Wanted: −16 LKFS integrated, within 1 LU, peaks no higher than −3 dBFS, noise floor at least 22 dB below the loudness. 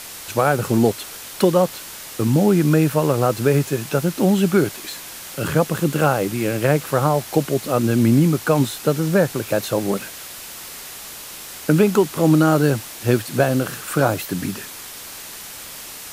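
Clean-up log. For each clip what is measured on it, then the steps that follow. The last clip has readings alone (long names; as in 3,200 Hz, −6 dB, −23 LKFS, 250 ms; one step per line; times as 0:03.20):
background noise floor −36 dBFS; target noise floor −41 dBFS; integrated loudness −19.0 LKFS; sample peak −2.0 dBFS; target loudness −16.0 LKFS
→ broadband denoise 6 dB, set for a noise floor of −36 dBFS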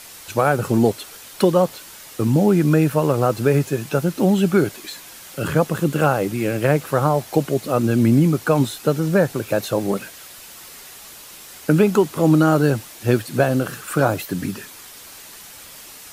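background noise floor −41 dBFS; target noise floor −42 dBFS
→ broadband denoise 6 dB, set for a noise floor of −41 dBFS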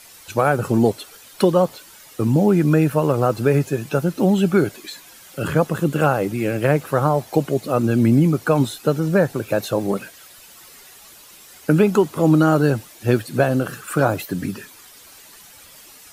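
background noise floor −45 dBFS; integrated loudness −19.5 LKFS; sample peak −2.0 dBFS; target loudness −16.0 LKFS
→ level +3.5 dB
brickwall limiter −3 dBFS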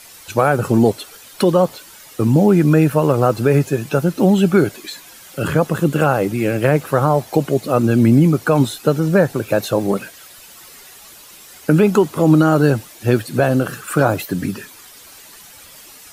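integrated loudness −16.5 LKFS; sample peak −3.0 dBFS; background noise floor −42 dBFS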